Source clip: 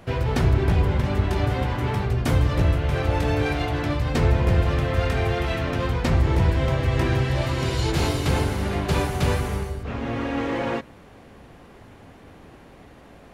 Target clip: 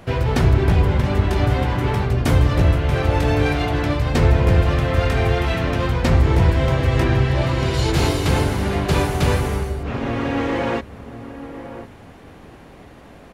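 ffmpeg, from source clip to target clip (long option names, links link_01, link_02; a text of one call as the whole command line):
ffmpeg -i in.wav -filter_complex "[0:a]asettb=1/sr,asplit=3[link_01][link_02][link_03];[link_01]atrim=end=7.044[link_04];[link_02]atrim=start=7.04:end=7.74,asetpts=PTS-STARTPTS,afade=type=in:duration=0.004:curve=qsin,afade=type=out:start_time=0.696:duration=0.004:curve=qsin,highshelf=frequency=6200:gain=-8.5[link_05];[link_03]atrim=start=7.736[link_06];[link_04][link_05]acrossfade=duration=0.004:curve1=hsin:curve2=qsin[link_07];[link_07][link_06]acrossfade=duration=0.004:curve1=qsin:curve2=hsin,asplit=2[link_08][link_09];[link_09]adelay=1050,volume=-12dB,highshelf=frequency=4000:gain=-23.6[link_10];[link_08][link_10]amix=inputs=2:normalize=0,volume=4dB" out.wav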